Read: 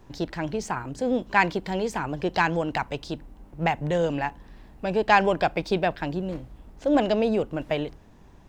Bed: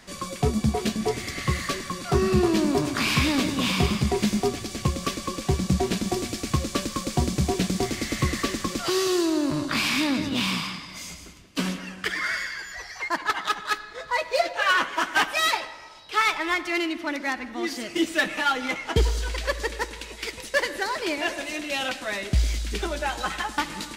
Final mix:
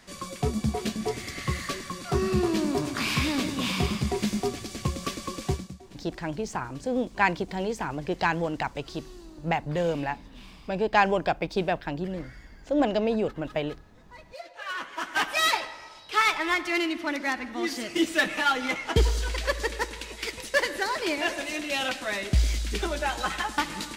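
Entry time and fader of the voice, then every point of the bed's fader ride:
5.85 s, -2.5 dB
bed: 5.52 s -4 dB
5.79 s -25 dB
14.08 s -25 dB
15.4 s -0.5 dB

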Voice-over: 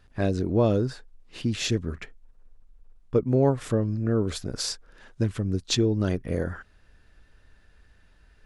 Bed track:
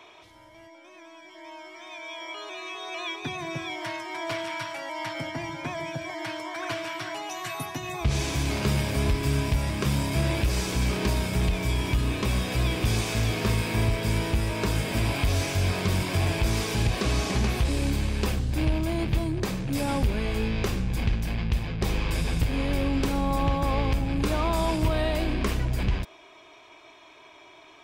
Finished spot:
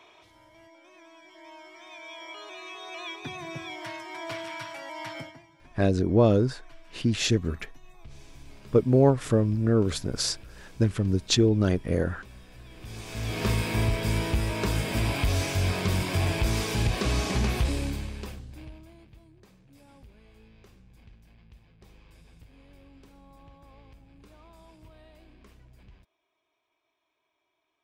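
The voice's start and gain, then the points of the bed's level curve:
5.60 s, +2.0 dB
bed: 5.19 s -4.5 dB
5.47 s -24 dB
12.65 s -24 dB
13.44 s -1 dB
17.66 s -1 dB
19.12 s -28 dB

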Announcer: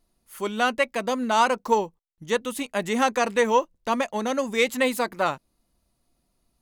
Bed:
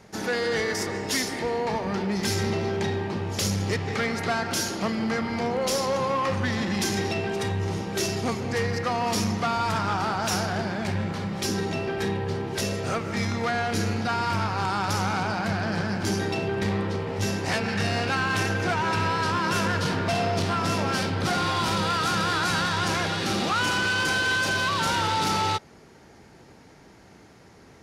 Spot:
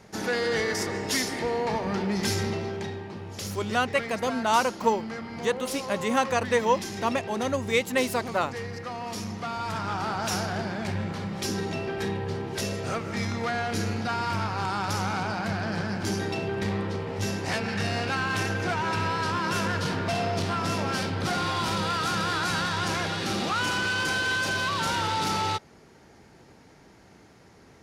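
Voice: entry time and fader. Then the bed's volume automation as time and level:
3.15 s, -2.5 dB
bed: 2.28 s -0.5 dB
3.04 s -9 dB
9.22 s -9 dB
10.16 s -2.5 dB

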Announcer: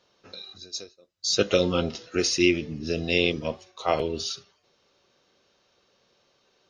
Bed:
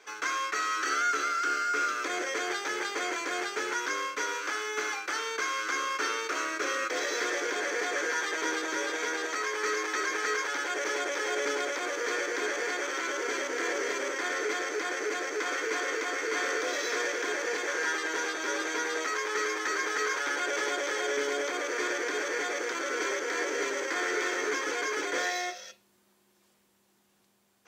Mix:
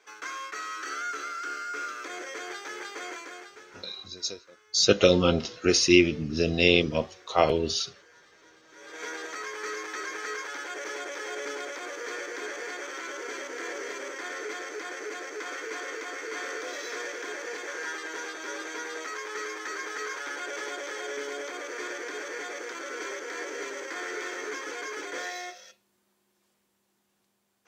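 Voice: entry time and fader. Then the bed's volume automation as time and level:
3.50 s, +2.5 dB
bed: 3.14 s -6 dB
4.03 s -27 dB
8.64 s -27 dB
9.04 s -5 dB

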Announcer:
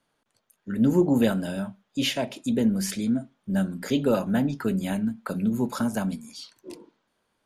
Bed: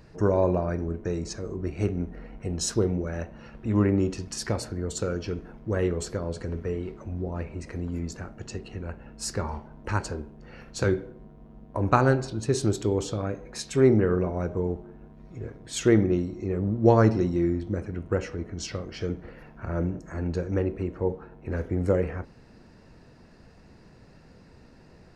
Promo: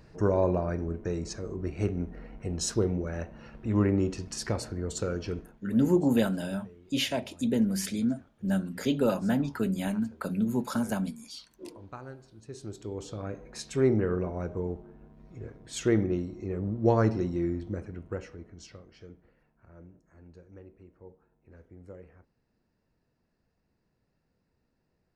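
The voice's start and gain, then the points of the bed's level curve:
4.95 s, -3.0 dB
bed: 5.39 s -2.5 dB
5.72 s -23 dB
12.23 s -23 dB
13.36 s -5 dB
17.72 s -5 dB
19.56 s -23.5 dB

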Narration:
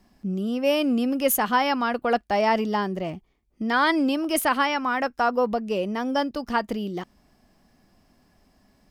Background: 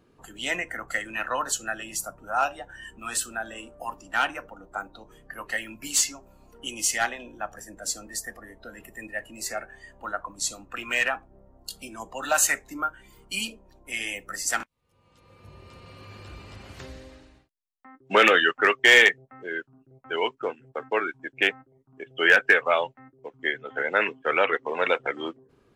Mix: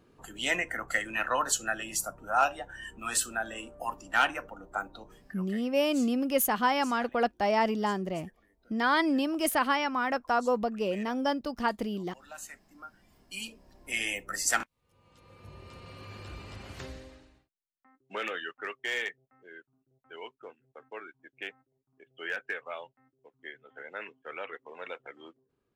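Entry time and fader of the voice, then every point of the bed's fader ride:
5.10 s, -4.5 dB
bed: 5.07 s -0.5 dB
5.7 s -23 dB
12.6 s -23 dB
13.9 s -0.5 dB
16.85 s -0.5 dB
18.16 s -17.5 dB

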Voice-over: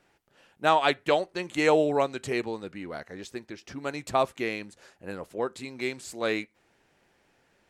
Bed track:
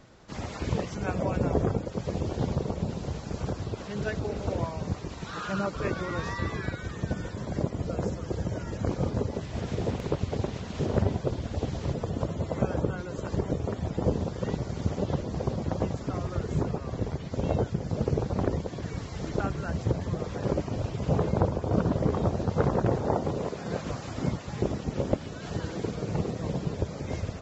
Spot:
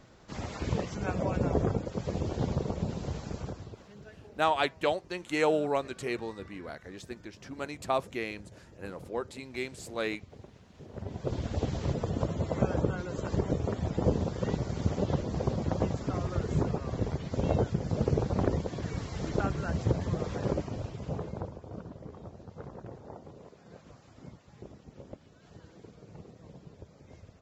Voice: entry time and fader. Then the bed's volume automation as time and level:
3.75 s, -4.5 dB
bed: 3.25 s -2 dB
4.1 s -20 dB
10.9 s -20 dB
11.36 s -0.5 dB
20.34 s -0.5 dB
21.95 s -19.5 dB

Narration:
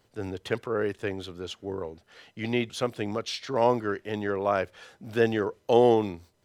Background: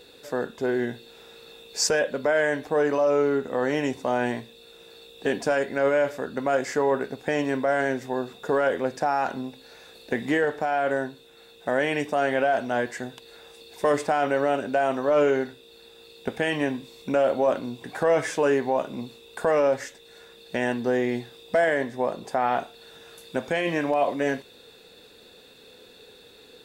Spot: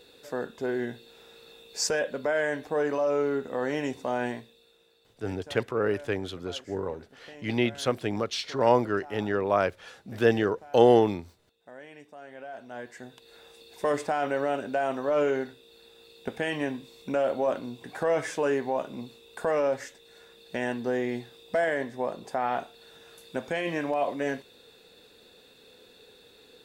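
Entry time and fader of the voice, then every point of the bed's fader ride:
5.05 s, +1.5 dB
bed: 4.26 s -4.5 dB
5.25 s -22.5 dB
12.26 s -22.5 dB
13.38 s -4.5 dB

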